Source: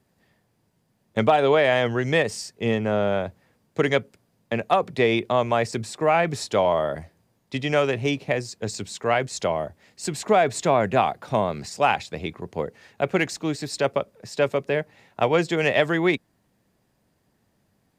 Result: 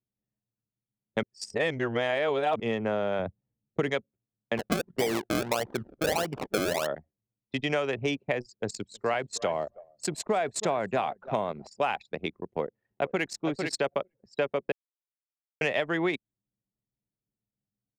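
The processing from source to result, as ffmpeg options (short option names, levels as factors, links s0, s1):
-filter_complex "[0:a]asettb=1/sr,asplit=3[s0][s1][s2];[s0]atrim=end=3.194[s3];[s1]atrim=start=3.19:end=3.9,asetpts=PTS-STARTPTS,afade=t=in:d=0.004:c=qsin,afade=t=out:st=0.706:d=0.004:c=qsin,lowshelf=f=260:g=8[s4];[s2]atrim=start=3.896[s5];[s3][s4]acrossfade=d=0.004:c1=hsin:c2=qsin[s6];[s6][s5]acrossfade=d=0.004:c1=qsin:c2=hsin,asettb=1/sr,asplit=3[s7][s8][s9];[s7]atrim=end=4.574[s10];[s8]atrim=start=4.57:end=6.87,asetpts=PTS-STARTPTS,afade=t=in:d=0.004:c=qsin,afade=t=out:st=2.296:d=0.004:c=qsin,acrusher=samples=32:mix=1:aa=0.000001:lfo=1:lforange=32:lforate=1.6[s11];[s9]atrim=start=6.866[s12];[s10][s11]acrossfade=d=0.004:c1=hsin:c2=qsin[s13];[s13][s12]acrossfade=d=0.004:c1=qsin:c2=hsin,asettb=1/sr,asplit=3[s14][s15][s16];[s14]atrim=end=8.434[s17];[s15]atrim=start=8.43:end=11.67,asetpts=PTS-STARTPTS,afade=t=in:d=0.004:c=qsin,afade=t=out:st=3.236:d=0.004:c=qsin,aecho=1:1:316|632|948:0.141|0.048|0.0163,atrim=end_sample=142884[s18];[s16]atrim=start=11.666[s19];[s17][s18]acrossfade=d=0.004:c1=hsin:c2=qsin[s20];[s20][s19]acrossfade=d=0.004:c1=qsin:c2=hsin,asplit=2[s21][s22];[s22]afade=t=in:st=12.46:d=0.01,afade=t=out:st=13.32:d=0.01,aecho=0:1:450|900:0.334965|0.0502448[s23];[s21][s23]amix=inputs=2:normalize=0,asplit=5[s24][s25][s26][s27][s28];[s24]atrim=end=1.232[s29];[s25]atrim=start=1.228:end=2.602,asetpts=PTS-STARTPTS,areverse[s30];[s26]atrim=start=2.598:end=14.72,asetpts=PTS-STARTPTS,afade=t=out:st=12.118:d=0.004:c=hsin[s31];[s27]atrim=start=14.72:end=15.61,asetpts=PTS-STARTPTS,volume=0[s32];[s28]atrim=start=15.61,asetpts=PTS-STARTPTS,afade=t=in:d=0.004:c=hsin[s33];[s29][s30]acrossfade=d=0.004:c1=hsin:c2=hsin[s34];[s31][s32][s33]concat=n=3:v=0:a=1[s35];[s34][s35]acrossfade=d=0.004:c1=hsin:c2=hsin,highpass=f=210:p=1,anlmdn=25.1,acompressor=threshold=0.0631:ratio=6"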